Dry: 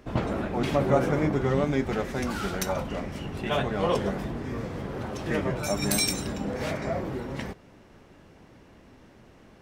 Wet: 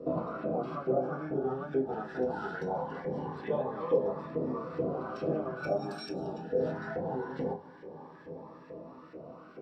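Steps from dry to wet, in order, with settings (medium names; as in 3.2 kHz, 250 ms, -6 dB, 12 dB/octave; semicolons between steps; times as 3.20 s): 6.10–7.13 s: peaking EQ 2.4 kHz -> 310 Hz -13.5 dB 0.69 oct; compression 6:1, threshold -37 dBFS, peak gain reduction 18.5 dB; LFO band-pass saw up 2.3 Hz 470–1900 Hz; reverberation RT60 0.20 s, pre-delay 3 ms, DRR -6 dB; Shepard-style phaser rising 0.22 Hz; trim +3.5 dB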